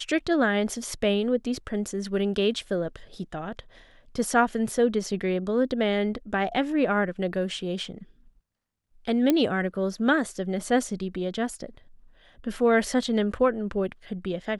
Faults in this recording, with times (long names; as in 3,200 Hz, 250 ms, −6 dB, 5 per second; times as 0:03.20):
0:09.30: click −9 dBFS